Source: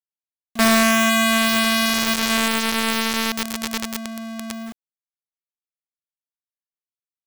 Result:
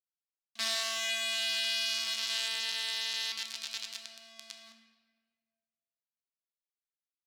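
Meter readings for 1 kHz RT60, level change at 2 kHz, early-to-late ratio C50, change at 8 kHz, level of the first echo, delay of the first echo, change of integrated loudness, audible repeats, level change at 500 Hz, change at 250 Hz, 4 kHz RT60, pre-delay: 1.3 s, −16.0 dB, 6.0 dB, −13.0 dB, no echo audible, no echo audible, −13.0 dB, no echo audible, −23.0 dB, −39.5 dB, 1.1 s, 14 ms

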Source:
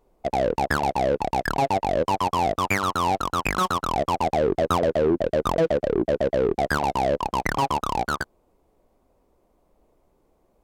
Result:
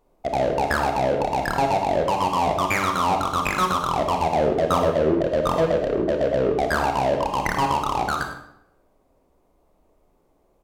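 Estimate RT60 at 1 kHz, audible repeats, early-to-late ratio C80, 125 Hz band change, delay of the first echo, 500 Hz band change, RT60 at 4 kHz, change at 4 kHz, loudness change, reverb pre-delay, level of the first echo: 0.75 s, 1, 8.0 dB, +1.0 dB, 103 ms, +1.5 dB, 0.60 s, +1.5 dB, +1.5 dB, 26 ms, −13.0 dB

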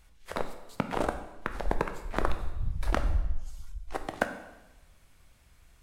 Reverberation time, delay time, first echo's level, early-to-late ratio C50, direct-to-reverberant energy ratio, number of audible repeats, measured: 1.0 s, no echo audible, no echo audible, 10.0 dB, 7.0 dB, no echo audible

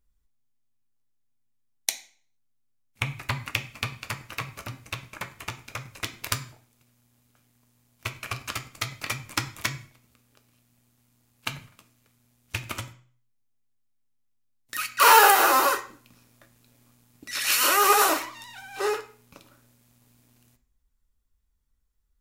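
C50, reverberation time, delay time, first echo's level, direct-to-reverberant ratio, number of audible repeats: 13.5 dB, 0.45 s, no echo audible, no echo audible, 6.0 dB, no echo audible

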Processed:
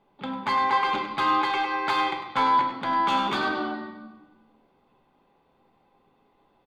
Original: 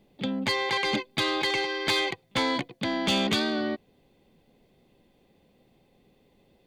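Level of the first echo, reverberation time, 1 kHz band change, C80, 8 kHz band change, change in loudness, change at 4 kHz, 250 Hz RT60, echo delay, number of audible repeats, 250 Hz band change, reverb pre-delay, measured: −10.0 dB, 1.1 s, +10.5 dB, 6.5 dB, below −10 dB, +2.0 dB, −6.0 dB, 1.6 s, 100 ms, 1, −3.0 dB, 5 ms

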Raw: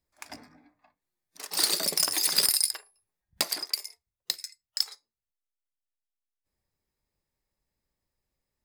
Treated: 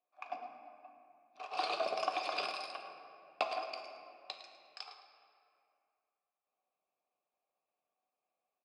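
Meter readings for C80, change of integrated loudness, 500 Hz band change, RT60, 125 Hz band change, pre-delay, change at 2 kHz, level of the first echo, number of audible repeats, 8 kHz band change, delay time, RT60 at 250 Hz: 6.0 dB, −13.5 dB, +3.0 dB, 2.6 s, below −15 dB, 4 ms, −4.5 dB, −12.5 dB, 1, −33.0 dB, 107 ms, 3.3 s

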